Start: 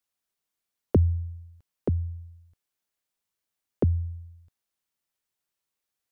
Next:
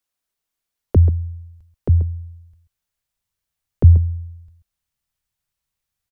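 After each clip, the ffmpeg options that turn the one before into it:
-af "asubboost=boost=8.5:cutoff=110,aecho=1:1:134:0.237,volume=2.5dB"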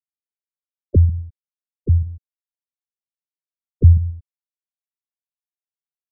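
-filter_complex "[0:a]aeval=exprs='sgn(val(0))*max(abs(val(0))-0.0126,0)':c=same,asplit=2[a][b];[b]adelay=88,lowpass=f=880:p=1,volume=-18dB,asplit=2[c][d];[d]adelay=88,lowpass=f=880:p=1,volume=0.4,asplit=2[e][f];[f]adelay=88,lowpass=f=880:p=1,volume=0.4[g];[a][c][e][g]amix=inputs=4:normalize=0,afftfilt=real='re*gte(hypot(re,im),0.282)':imag='im*gte(hypot(re,im),0.282)':win_size=1024:overlap=0.75"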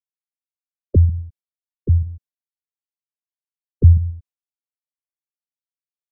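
-af "agate=range=-33dB:threshold=-43dB:ratio=3:detection=peak"

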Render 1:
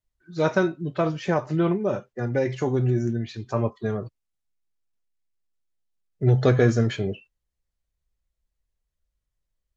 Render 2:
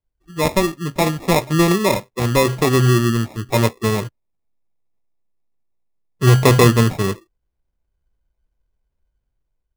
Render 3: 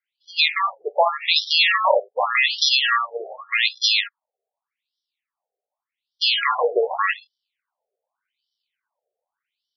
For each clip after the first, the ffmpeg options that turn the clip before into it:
-af "lowpass=f=2.5k:w=0.5412,lowpass=f=2.5k:w=1.3066,dynaudnorm=f=360:g=5:m=5.5dB,acrusher=samples=29:mix=1:aa=0.000001,volume=3dB"
-af "equalizer=f=4.3k:t=o:w=2.2:g=10,alimiter=level_in=5dB:limit=-1dB:release=50:level=0:latency=1,afftfilt=real='re*between(b*sr/1024,540*pow(4200/540,0.5+0.5*sin(2*PI*0.85*pts/sr))/1.41,540*pow(4200/540,0.5+0.5*sin(2*PI*0.85*pts/sr))*1.41)':imag='im*between(b*sr/1024,540*pow(4200/540,0.5+0.5*sin(2*PI*0.85*pts/sr))/1.41,540*pow(4200/540,0.5+0.5*sin(2*PI*0.85*pts/sr))*1.41)':win_size=1024:overlap=0.75,volume=4dB"

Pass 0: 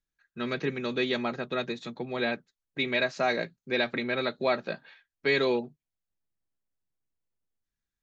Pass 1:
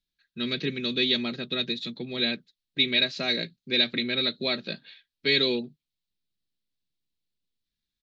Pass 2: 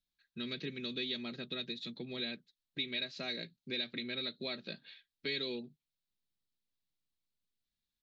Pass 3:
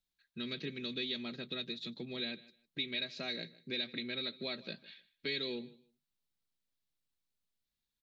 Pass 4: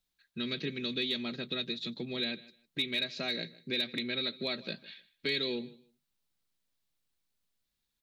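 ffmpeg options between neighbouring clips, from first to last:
-af "firequalizer=gain_entry='entry(110,0);entry(200,4);entry(810,-12);entry(2200,2);entry(3900,13);entry(6400,-2)':delay=0.05:min_phase=1"
-af "acompressor=threshold=-37dB:ratio=2,volume=-5dB"
-af "aecho=1:1:154|308:0.1|0.02"
-af "asoftclip=type=hard:threshold=-28dB,volume=5dB"

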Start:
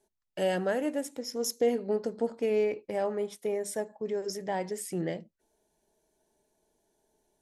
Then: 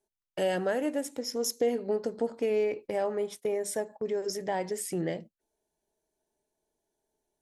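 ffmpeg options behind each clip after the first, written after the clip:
-af "agate=range=-12dB:threshold=-46dB:ratio=16:detection=peak,equalizer=f=200:w=5.4:g=-4,acompressor=threshold=-34dB:ratio=1.5,volume=3.5dB"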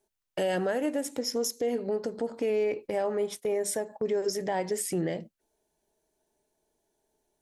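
-af "alimiter=level_in=2dB:limit=-24dB:level=0:latency=1:release=172,volume=-2dB,volume=5.5dB"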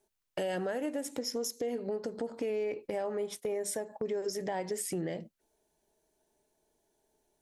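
-af "acompressor=threshold=-37dB:ratio=2,volume=1dB"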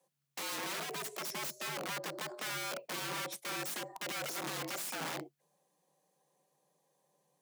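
-af "aeval=exprs='(mod(50.1*val(0)+1,2)-1)/50.1':c=same,afreqshift=140,aeval=exprs='0.0562*(cos(1*acos(clip(val(0)/0.0562,-1,1)))-cos(1*PI/2))+0.000708*(cos(7*acos(clip(val(0)/0.0562,-1,1)))-cos(7*PI/2))':c=same"

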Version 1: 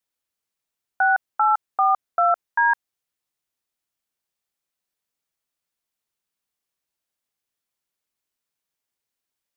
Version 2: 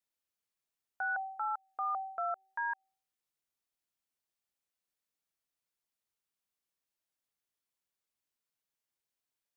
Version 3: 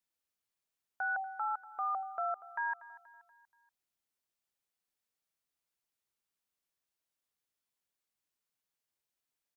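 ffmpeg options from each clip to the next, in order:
-af "bandreject=f=384.5:t=h:w=4,bandreject=f=769:t=h:w=4,alimiter=limit=-21.5dB:level=0:latency=1:release=167,volume=-6.5dB"
-af "aecho=1:1:239|478|717|956:0.126|0.0604|0.029|0.0139"

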